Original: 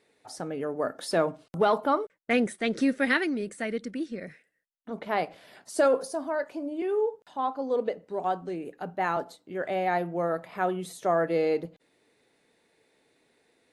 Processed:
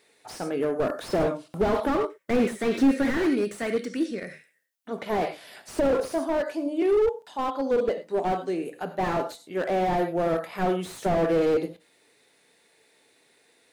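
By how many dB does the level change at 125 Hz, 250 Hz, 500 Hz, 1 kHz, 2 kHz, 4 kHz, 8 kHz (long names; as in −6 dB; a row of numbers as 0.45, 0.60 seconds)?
+5.0, +4.5, +3.0, +0.5, −2.5, +0.5, +0.5 decibels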